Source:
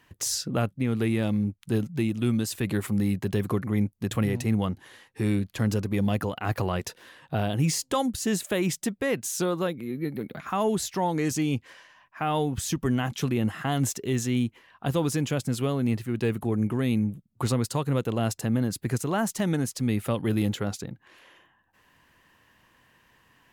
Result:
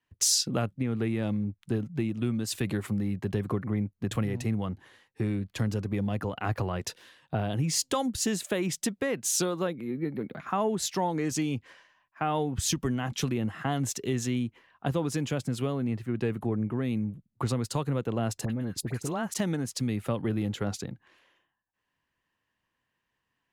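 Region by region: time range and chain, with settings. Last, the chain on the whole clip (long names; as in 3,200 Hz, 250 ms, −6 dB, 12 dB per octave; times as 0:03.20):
0:18.45–0:19.34: downward compressor 2.5 to 1, threshold −29 dBFS + all-pass dispersion highs, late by 50 ms, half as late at 1,500 Hz
whole clip: high-shelf EQ 11,000 Hz −11 dB; downward compressor 6 to 1, threshold −28 dBFS; multiband upward and downward expander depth 70%; level +2.5 dB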